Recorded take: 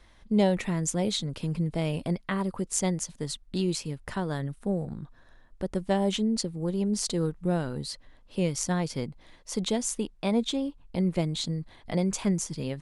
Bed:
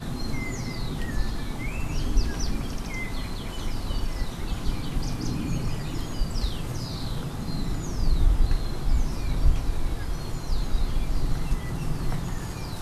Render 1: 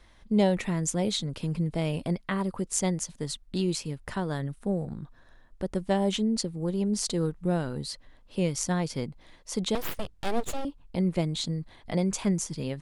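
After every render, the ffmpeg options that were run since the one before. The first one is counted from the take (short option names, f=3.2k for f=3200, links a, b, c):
-filter_complex "[0:a]asettb=1/sr,asplit=3[a][b][c];[a]atrim=end=9.754[d];[b]atrim=start=9.75:end=10.65,asetpts=PTS-STARTPTS,afade=t=in:d=0.004:c=qsin,afade=t=out:st=0.896:d=0.004:c=qsin,aeval=exprs='abs(val(0))':c=same[e];[c]atrim=start=10.646[f];[d][e]acrossfade=d=0.004:c1=hsin:c2=qsin[g];[g][f]acrossfade=d=0.004:c1=qsin:c2=hsin"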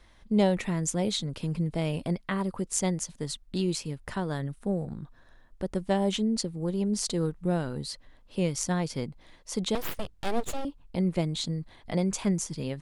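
-af "aeval=exprs='0.266*(cos(1*acos(clip(val(0)/0.266,-1,1)))-cos(1*PI/2))+0.00596*(cos(3*acos(clip(val(0)/0.266,-1,1)))-cos(3*PI/2))':c=same"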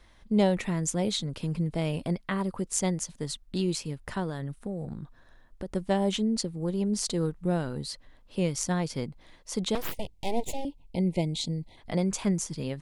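-filter_complex "[0:a]asettb=1/sr,asplit=3[a][b][c];[a]atrim=end=4.294[d];[b]atrim=start=4.29:end=5.7,asetpts=PTS-STARTPTS,afade=t=in:d=0.004:c=qsin,afade=t=out:st=1.406:d=0.004:c=qsin,acompressor=threshold=-29dB:ratio=6:attack=3.2:release=140:knee=1:detection=peak[e];[c]atrim=start=5.696[f];[d][e]acrossfade=d=0.004:c1=hsin:c2=qsin[g];[g][f]acrossfade=d=0.004:c1=qsin:c2=hsin,asplit=3[h][i][j];[h]afade=t=out:st=9.91:d=0.02[k];[i]asuperstop=centerf=1400:order=12:qfactor=1.4,afade=t=in:st=9.91:d=0.02,afade=t=out:st=11.76:d=0.02[l];[j]afade=t=in:st=11.76:d=0.02[m];[k][l][m]amix=inputs=3:normalize=0"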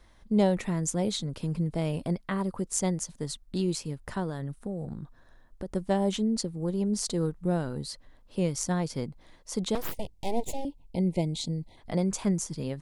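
-af "equalizer=f=2.7k:w=1:g=-4.5"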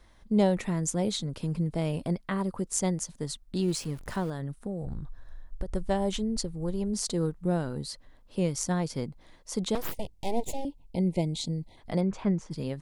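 -filter_complex "[0:a]asettb=1/sr,asplit=3[a][b][c];[a]atrim=end=3.624[d];[b]atrim=start=3.62:end=4.3,asetpts=PTS-STARTPTS,afade=t=in:d=0.004:c=qsin,afade=t=out:st=0.676:d=0.004:c=qsin,aeval=exprs='val(0)+0.5*0.00794*sgn(val(0))':c=same[e];[c]atrim=start=4.296[f];[d][e]acrossfade=d=0.004:c1=hsin:c2=qsin[g];[g][f]acrossfade=d=0.004:c1=qsin:c2=hsin,asplit=3[h][i][j];[h]afade=t=out:st=4.82:d=0.02[k];[i]asubboost=boost=6:cutoff=82,afade=t=in:st=4.82:d=0.02,afade=t=out:st=6.93:d=0.02[l];[j]afade=t=in:st=6.93:d=0.02[m];[k][l][m]amix=inputs=3:normalize=0,asplit=3[n][o][p];[n]afade=t=out:st=12:d=0.02[q];[o]lowpass=2.6k,afade=t=in:st=12:d=0.02,afade=t=out:st=12.5:d=0.02[r];[p]afade=t=in:st=12.5:d=0.02[s];[q][r][s]amix=inputs=3:normalize=0"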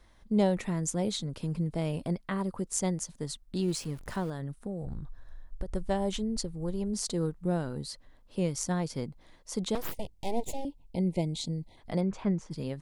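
-af "volume=-2dB"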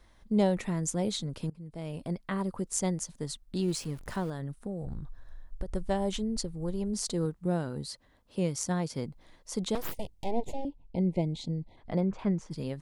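-filter_complex "[0:a]asettb=1/sr,asplit=3[a][b][c];[a]atrim=end=7.254[d];[b]atrim=start=7.25:end=9.05,asetpts=PTS-STARTPTS,afade=t=in:d=0.004:c=qsin,afade=t=out:st=1.796:d=0.004:c=qsin,highpass=48[e];[c]atrim=start=9.046[f];[d][e]acrossfade=d=0.004:c1=hsin:c2=qsin[g];[g][f]acrossfade=d=0.004:c1=qsin:c2=hsin,asettb=1/sr,asplit=3[h][i][j];[h]atrim=end=10.244[k];[i]atrim=start=10.24:end=12.19,asetpts=PTS-STARTPTS,afade=t=in:d=0.004:c=qsin,afade=t=out:st=1.946:d=0.004:c=qsin,aemphasis=mode=reproduction:type=75fm[l];[j]atrim=start=12.186[m];[k][l]acrossfade=d=0.004:c1=hsin:c2=qsin[n];[n][m]acrossfade=d=0.004:c1=qsin:c2=hsin,asplit=2[o][p];[o]atrim=end=1.5,asetpts=PTS-STARTPTS,afade=t=out:st=1.496:d=0.004:c=hsin:silence=0.0630957[q];[p]atrim=start=1.5,asetpts=PTS-STARTPTS,afade=t=in:d=0.84:silence=0.0630957[r];[q][r]concat=n=2:v=0:a=1"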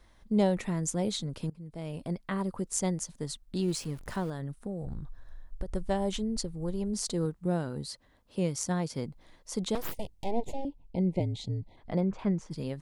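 -filter_complex "[0:a]asplit=3[a][b][c];[a]afade=t=out:st=11.19:d=0.02[d];[b]afreqshift=-44,afade=t=in:st=11.19:d=0.02,afade=t=out:st=11.61:d=0.02[e];[c]afade=t=in:st=11.61:d=0.02[f];[d][e][f]amix=inputs=3:normalize=0"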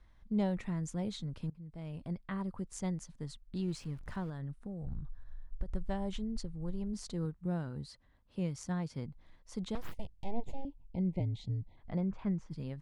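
-af "lowpass=f=1.3k:p=1,equalizer=f=460:w=0.54:g=-10"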